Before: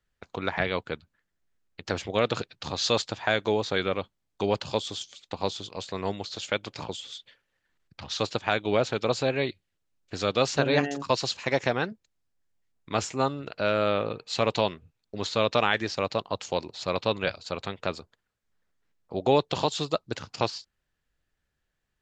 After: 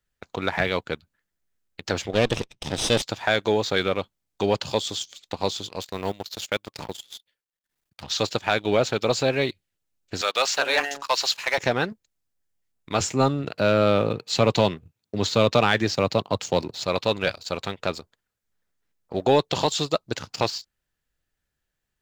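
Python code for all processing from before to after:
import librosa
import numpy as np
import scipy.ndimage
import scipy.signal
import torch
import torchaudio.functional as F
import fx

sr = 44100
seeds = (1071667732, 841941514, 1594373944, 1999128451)

y = fx.chain(x, sr, fx.lower_of_two(delay_ms=0.35),
    fx.lowpass(hz=6500.0, slope=12), at=(2.13, 3.02))
y = fx.chain(y, sr, fx.law_mismatch(coded='A'),
    fx.transient(attack_db=-2, sustain_db=-9), at=(5.81, 8.03))
y = fx.chain(y, sr, fx.highpass(hz=840.0, slope=12),
    fx.high_shelf(hz=5700.0, db=-7.0),
    fx.leveller(passes=1), at=(10.21, 11.58))
y = fx.chain(y, sr, fx.highpass(hz=81.0, slope=24),
    fx.low_shelf(hz=350.0, db=7.5), at=(13.0, 16.85))
y = fx.high_shelf(y, sr, hz=7100.0, db=8.5)
y = fx.notch(y, sr, hz=1100.0, q=26.0)
y = fx.leveller(y, sr, passes=1)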